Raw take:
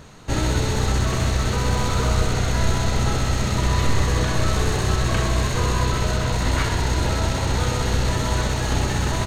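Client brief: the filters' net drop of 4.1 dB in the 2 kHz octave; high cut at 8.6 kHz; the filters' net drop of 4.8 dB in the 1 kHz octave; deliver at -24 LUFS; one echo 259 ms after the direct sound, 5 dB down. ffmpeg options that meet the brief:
-af "lowpass=8600,equalizer=f=1000:t=o:g=-5,equalizer=f=2000:t=o:g=-3.5,aecho=1:1:259:0.562,volume=0.75"

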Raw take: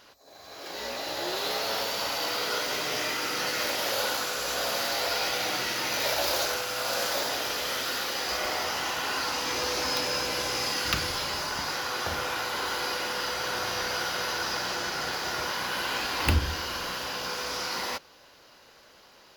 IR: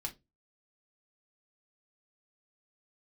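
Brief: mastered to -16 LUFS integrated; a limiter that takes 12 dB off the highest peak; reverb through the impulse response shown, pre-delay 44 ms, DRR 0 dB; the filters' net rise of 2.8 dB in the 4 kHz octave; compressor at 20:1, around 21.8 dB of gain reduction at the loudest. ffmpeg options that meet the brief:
-filter_complex "[0:a]equalizer=f=4000:t=o:g=3.5,acompressor=threshold=0.01:ratio=20,alimiter=level_in=3.98:limit=0.0631:level=0:latency=1,volume=0.251,asplit=2[s0][s1];[1:a]atrim=start_sample=2205,adelay=44[s2];[s1][s2]afir=irnorm=-1:irlink=0,volume=1.06[s3];[s0][s3]amix=inputs=2:normalize=0,volume=17.8"

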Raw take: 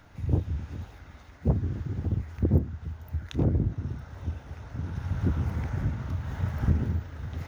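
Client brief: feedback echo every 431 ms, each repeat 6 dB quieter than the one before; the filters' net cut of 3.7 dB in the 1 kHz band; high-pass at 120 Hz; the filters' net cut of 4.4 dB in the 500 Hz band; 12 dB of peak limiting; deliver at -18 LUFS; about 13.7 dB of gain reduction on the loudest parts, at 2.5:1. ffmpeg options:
-af "highpass=120,equalizer=f=500:t=o:g=-5.5,equalizer=f=1000:t=o:g=-3,acompressor=threshold=0.00631:ratio=2.5,alimiter=level_in=4.47:limit=0.0631:level=0:latency=1,volume=0.224,aecho=1:1:431|862|1293|1724|2155|2586:0.501|0.251|0.125|0.0626|0.0313|0.0157,volume=26.6"

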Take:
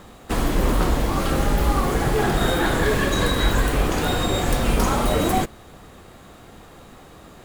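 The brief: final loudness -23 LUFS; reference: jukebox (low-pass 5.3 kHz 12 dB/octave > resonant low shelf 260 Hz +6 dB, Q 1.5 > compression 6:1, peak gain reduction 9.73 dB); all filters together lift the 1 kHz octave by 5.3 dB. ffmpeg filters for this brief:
-af "lowpass=5300,lowshelf=f=260:t=q:w=1.5:g=6,equalizer=f=1000:t=o:g=7.5,acompressor=threshold=0.126:ratio=6,volume=1.12"

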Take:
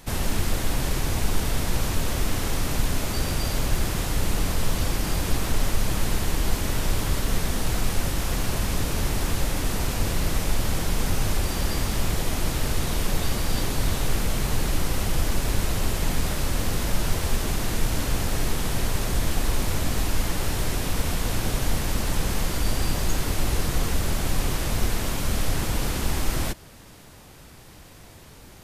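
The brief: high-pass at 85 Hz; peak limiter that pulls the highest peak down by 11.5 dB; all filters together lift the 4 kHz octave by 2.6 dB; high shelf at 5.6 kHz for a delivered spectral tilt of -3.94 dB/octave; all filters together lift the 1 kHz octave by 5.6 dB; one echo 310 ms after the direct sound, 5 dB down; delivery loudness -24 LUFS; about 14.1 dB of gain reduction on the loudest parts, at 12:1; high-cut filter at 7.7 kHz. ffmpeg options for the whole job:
-af "highpass=85,lowpass=7700,equalizer=f=1000:t=o:g=7,equalizer=f=4000:t=o:g=5,highshelf=f=5600:g=-4.5,acompressor=threshold=0.0126:ratio=12,alimiter=level_in=5.01:limit=0.0631:level=0:latency=1,volume=0.2,aecho=1:1:310:0.562,volume=11.9"

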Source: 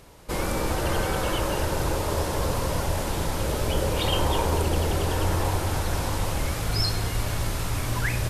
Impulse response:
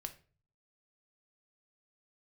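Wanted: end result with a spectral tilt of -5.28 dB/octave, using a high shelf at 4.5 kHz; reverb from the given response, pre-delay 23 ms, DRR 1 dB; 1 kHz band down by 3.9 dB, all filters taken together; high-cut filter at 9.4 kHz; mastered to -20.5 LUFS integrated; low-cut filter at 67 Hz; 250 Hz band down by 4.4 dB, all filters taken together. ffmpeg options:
-filter_complex "[0:a]highpass=67,lowpass=9400,equalizer=f=250:t=o:g=-6.5,equalizer=f=1000:t=o:g=-4,highshelf=f=4500:g=-8.5,asplit=2[s0][s1];[1:a]atrim=start_sample=2205,adelay=23[s2];[s1][s2]afir=irnorm=-1:irlink=0,volume=1.33[s3];[s0][s3]amix=inputs=2:normalize=0,volume=2"

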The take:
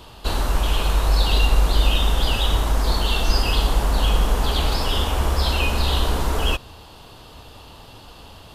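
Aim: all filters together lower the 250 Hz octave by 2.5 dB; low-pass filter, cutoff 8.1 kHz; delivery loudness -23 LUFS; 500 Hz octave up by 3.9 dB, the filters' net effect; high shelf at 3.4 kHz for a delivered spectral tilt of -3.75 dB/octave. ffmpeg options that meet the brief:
-af "lowpass=8100,equalizer=f=250:t=o:g=-5.5,equalizer=f=500:t=o:g=6,highshelf=f=3400:g=5.5,volume=0.75"

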